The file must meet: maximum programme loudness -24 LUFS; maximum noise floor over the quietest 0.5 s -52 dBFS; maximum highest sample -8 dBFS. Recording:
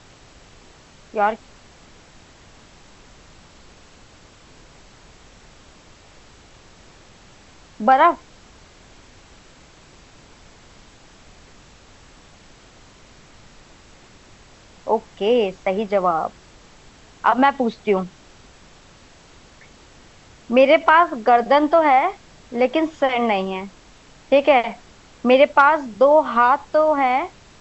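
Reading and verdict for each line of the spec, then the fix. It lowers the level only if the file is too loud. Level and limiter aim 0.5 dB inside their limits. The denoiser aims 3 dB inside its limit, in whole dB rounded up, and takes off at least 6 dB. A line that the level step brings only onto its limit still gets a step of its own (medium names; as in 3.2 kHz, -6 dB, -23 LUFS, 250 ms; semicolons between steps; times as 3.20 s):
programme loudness -18.0 LUFS: fail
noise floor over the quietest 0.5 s -48 dBFS: fail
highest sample -2.5 dBFS: fail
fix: trim -6.5 dB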